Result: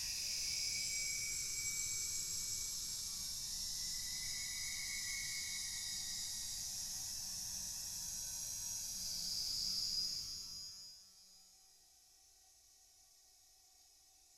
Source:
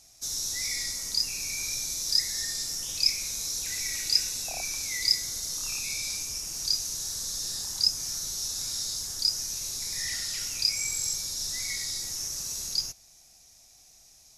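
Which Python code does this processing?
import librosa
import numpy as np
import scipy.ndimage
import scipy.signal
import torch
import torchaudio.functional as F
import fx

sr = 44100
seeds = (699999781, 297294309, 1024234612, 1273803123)

y = fx.env_flanger(x, sr, rest_ms=2.9, full_db=-22.5)
y = fx.comb_fb(y, sr, f0_hz=190.0, decay_s=0.73, harmonics='all', damping=0.0, mix_pct=80)
y = fx.paulstretch(y, sr, seeds[0], factor=4.3, window_s=0.5, from_s=10.54)
y = y * librosa.db_to_amplitude(4.0)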